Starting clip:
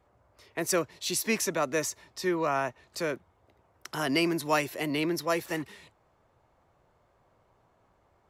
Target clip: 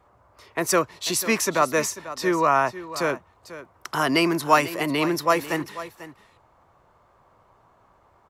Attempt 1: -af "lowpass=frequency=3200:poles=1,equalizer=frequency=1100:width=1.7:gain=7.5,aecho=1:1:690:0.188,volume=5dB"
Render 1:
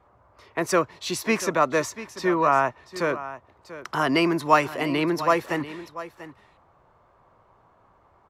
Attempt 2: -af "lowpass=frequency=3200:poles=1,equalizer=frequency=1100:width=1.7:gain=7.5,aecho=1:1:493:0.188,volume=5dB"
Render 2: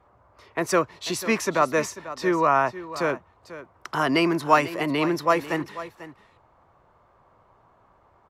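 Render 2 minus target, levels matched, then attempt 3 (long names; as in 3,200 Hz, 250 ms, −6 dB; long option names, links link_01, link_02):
4,000 Hz band −2.5 dB
-af "equalizer=frequency=1100:width=1.7:gain=7.5,aecho=1:1:493:0.188,volume=5dB"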